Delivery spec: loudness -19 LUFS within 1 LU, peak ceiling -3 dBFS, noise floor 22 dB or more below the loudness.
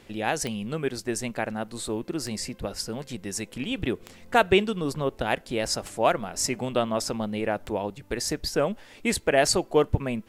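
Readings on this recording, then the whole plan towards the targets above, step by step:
clicks 6; loudness -27.5 LUFS; peak -7.0 dBFS; loudness target -19.0 LUFS
-> de-click; gain +8.5 dB; limiter -3 dBFS

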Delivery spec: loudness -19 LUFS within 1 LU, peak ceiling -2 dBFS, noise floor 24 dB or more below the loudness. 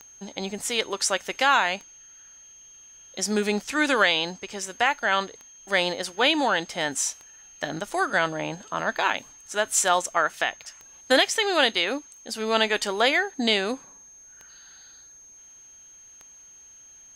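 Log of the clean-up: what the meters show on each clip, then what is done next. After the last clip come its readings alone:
clicks 10; steady tone 6400 Hz; tone level -47 dBFS; loudness -24.0 LUFS; peak -8.0 dBFS; loudness target -19.0 LUFS
-> de-click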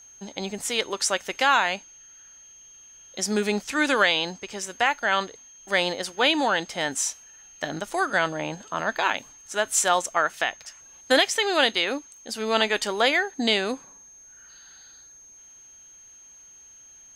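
clicks 0; steady tone 6400 Hz; tone level -47 dBFS
-> notch 6400 Hz, Q 30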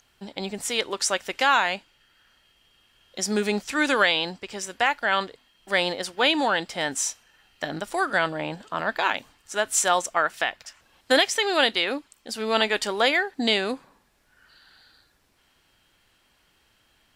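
steady tone none; loudness -24.0 LUFS; peak -8.0 dBFS; loudness target -19.0 LUFS
-> gain +5 dB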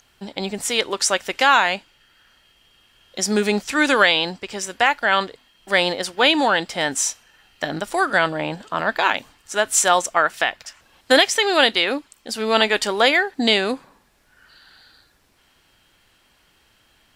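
loudness -19.0 LUFS; peak -3.0 dBFS; noise floor -60 dBFS

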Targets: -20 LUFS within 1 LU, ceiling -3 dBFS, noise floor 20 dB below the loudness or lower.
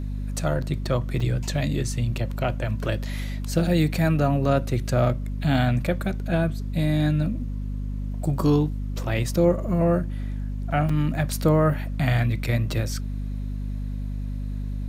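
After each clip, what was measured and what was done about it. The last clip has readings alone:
dropouts 2; longest dropout 4.5 ms; hum 50 Hz; harmonics up to 250 Hz; hum level -26 dBFS; loudness -25.0 LUFS; peak -7.5 dBFS; loudness target -20.0 LUFS
-> interpolate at 1.2/10.89, 4.5 ms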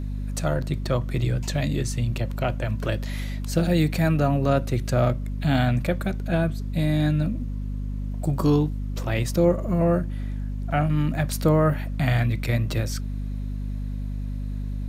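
dropouts 0; hum 50 Hz; harmonics up to 250 Hz; hum level -26 dBFS
-> notches 50/100/150/200/250 Hz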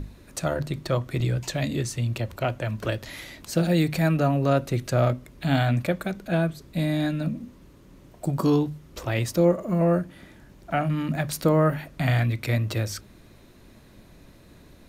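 hum none; loudness -25.5 LUFS; peak -9.0 dBFS; loudness target -20.0 LUFS
-> gain +5.5 dB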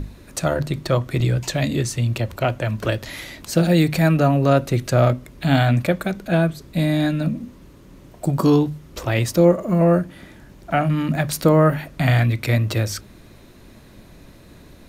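loudness -20.0 LUFS; peak -3.5 dBFS; noise floor -46 dBFS

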